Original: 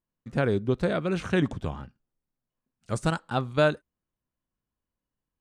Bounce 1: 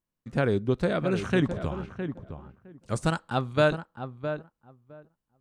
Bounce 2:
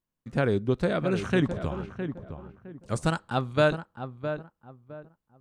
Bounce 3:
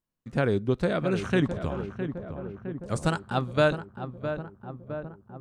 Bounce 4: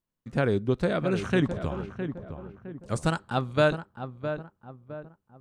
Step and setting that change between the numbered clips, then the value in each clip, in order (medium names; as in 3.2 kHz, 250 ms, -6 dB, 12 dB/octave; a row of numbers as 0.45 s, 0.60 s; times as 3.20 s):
filtered feedback delay, feedback: 15%, 28%, 69%, 41%